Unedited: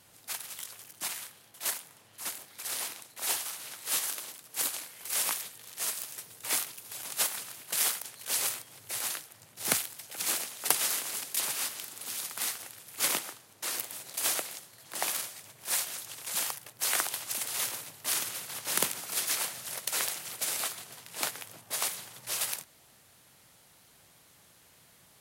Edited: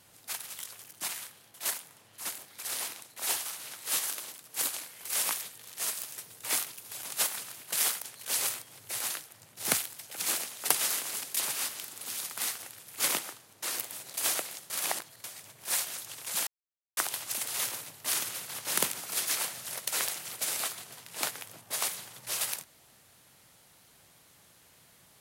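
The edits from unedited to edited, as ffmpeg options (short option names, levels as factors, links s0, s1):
-filter_complex "[0:a]asplit=5[s0][s1][s2][s3][s4];[s0]atrim=end=14.702[s5];[s1]atrim=start=14.698:end=15.242,asetpts=PTS-STARTPTS,areverse[s6];[s2]atrim=start=15.238:end=16.47,asetpts=PTS-STARTPTS,afade=t=out:st=1.228:d=0.004:c=hsin[s7];[s3]atrim=start=16.47:end=16.97,asetpts=PTS-STARTPTS,volume=0[s8];[s4]atrim=start=16.97,asetpts=PTS-STARTPTS,afade=t=in:d=0.004:c=hsin[s9];[s5][s6]acrossfade=d=0.004:c1=hsin:c2=hsin[s10];[s7][s8][s9]concat=n=3:v=0:a=1[s11];[s10][s11]acrossfade=d=0.004:c1=hsin:c2=hsin"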